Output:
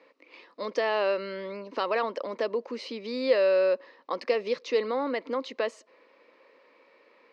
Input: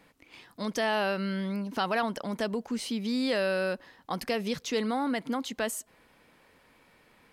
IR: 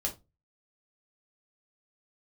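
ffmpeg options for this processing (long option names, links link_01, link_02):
-af "highpass=frequency=320:width=0.5412,highpass=frequency=320:width=1.3066,equalizer=frequency=530:width_type=q:width=4:gain=8,equalizer=frequency=760:width_type=q:width=4:gain=-9,equalizer=frequency=1100:width_type=q:width=4:gain=3,equalizer=frequency=1500:width_type=q:width=4:gain=-8,equalizer=frequency=3300:width_type=q:width=4:gain=-9,lowpass=frequency=4400:width=0.5412,lowpass=frequency=4400:width=1.3066,volume=3dB"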